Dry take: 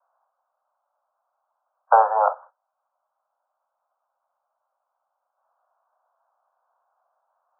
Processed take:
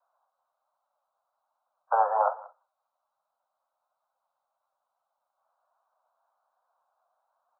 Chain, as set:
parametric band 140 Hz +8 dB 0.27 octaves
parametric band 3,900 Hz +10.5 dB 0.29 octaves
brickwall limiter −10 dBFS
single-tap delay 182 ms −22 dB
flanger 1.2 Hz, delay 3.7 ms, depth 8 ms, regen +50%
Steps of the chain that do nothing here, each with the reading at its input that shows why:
parametric band 140 Hz: nothing at its input below 430 Hz
parametric band 3,900 Hz: nothing at its input above 1,600 Hz

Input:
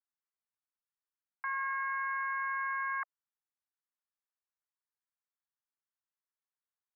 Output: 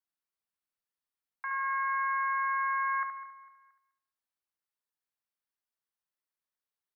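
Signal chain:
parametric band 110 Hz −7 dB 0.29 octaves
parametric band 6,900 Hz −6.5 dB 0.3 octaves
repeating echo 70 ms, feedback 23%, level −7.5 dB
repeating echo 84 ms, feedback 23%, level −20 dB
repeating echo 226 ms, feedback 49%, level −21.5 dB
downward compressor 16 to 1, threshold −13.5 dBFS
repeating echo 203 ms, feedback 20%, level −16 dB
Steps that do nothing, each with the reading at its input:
parametric band 110 Hz: nothing at its input below 850 Hz
parametric band 6,900 Hz: nothing at its input above 2,300 Hz
downward compressor, threshold −13.5 dBFS: peak of its input −24.0 dBFS

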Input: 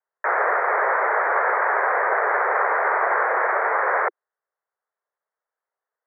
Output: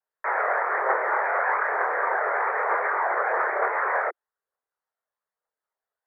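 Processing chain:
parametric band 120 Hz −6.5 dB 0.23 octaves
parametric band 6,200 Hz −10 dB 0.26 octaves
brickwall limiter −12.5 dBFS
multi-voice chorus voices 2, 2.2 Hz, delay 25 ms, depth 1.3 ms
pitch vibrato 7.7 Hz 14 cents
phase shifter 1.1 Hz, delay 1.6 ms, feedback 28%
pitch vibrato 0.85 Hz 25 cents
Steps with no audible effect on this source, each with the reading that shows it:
parametric band 120 Hz: nothing at its input below 300 Hz
parametric band 6,200 Hz: nothing at its input above 2,400 Hz

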